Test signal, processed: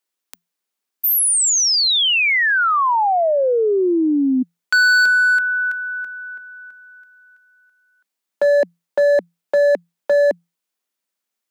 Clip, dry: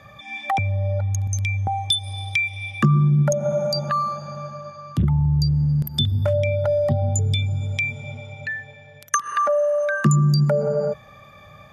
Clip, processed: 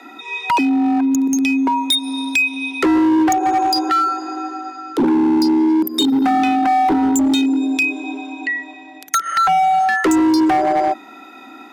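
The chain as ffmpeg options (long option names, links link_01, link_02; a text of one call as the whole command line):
ffmpeg -i in.wav -af "afreqshift=170,aeval=exprs='0.501*(cos(1*acos(clip(val(0)/0.501,-1,1)))-cos(1*PI/2))+0.01*(cos(5*acos(clip(val(0)/0.501,-1,1)))-cos(5*PI/2))':channel_layout=same,volume=18dB,asoftclip=hard,volume=-18dB,volume=6dB" out.wav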